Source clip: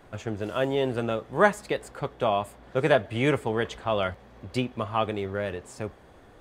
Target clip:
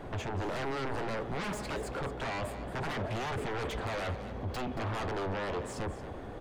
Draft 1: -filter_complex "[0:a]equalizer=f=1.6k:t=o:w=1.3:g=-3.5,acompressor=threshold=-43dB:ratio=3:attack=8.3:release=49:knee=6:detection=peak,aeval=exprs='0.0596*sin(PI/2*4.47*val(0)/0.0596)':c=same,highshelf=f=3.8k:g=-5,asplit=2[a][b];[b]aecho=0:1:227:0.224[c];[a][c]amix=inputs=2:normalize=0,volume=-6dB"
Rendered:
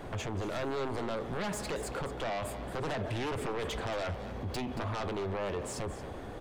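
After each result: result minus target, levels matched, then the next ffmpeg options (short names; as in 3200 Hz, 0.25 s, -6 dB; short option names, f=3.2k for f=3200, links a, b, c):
compressor: peak gain reduction +5 dB; 8000 Hz band +4.0 dB
-filter_complex "[0:a]equalizer=f=1.6k:t=o:w=1.3:g=-3.5,acompressor=threshold=-35.5dB:ratio=3:attack=8.3:release=49:knee=6:detection=peak,aeval=exprs='0.0596*sin(PI/2*4.47*val(0)/0.0596)':c=same,highshelf=f=3.8k:g=-5,asplit=2[a][b];[b]aecho=0:1:227:0.224[c];[a][c]amix=inputs=2:normalize=0,volume=-6dB"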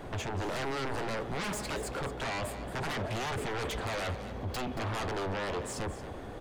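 8000 Hz band +5.5 dB
-filter_complex "[0:a]equalizer=f=1.6k:t=o:w=1.3:g=-3.5,acompressor=threshold=-35.5dB:ratio=3:attack=8.3:release=49:knee=6:detection=peak,aeval=exprs='0.0596*sin(PI/2*4.47*val(0)/0.0596)':c=same,highshelf=f=3.8k:g=-13,asplit=2[a][b];[b]aecho=0:1:227:0.224[c];[a][c]amix=inputs=2:normalize=0,volume=-6dB"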